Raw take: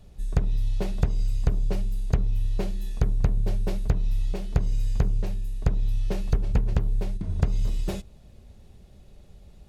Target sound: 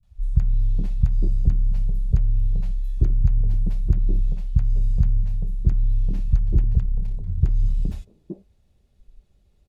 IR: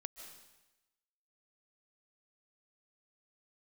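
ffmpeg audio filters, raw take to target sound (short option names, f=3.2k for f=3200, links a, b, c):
-filter_complex "[0:a]acrossover=split=180|650[a][b][c];[c]adelay=30[d];[b]adelay=420[e];[a][e][d]amix=inputs=3:normalize=0,asettb=1/sr,asplit=3[f][g][h];[f]atrim=end=6.794[i];[g]atrim=start=6.79:end=7.42,asetpts=PTS-STARTPTS,afade=t=in:d=0.004:c=qsin,afade=t=out:st=0.626:d=0.004:c=qsin,aeval=exprs='(tanh(11.2*val(0)+0.4)-tanh(0.4))/11.2':c=same[j];[h]atrim=start=7.416[k];[i][j]acrossfade=d=0.004:c1=hsin:c2=qsin[l];[l][k]acrossfade=d=0.004:c1=qsin:c2=hsin,afwtdn=0.0631,volume=5dB"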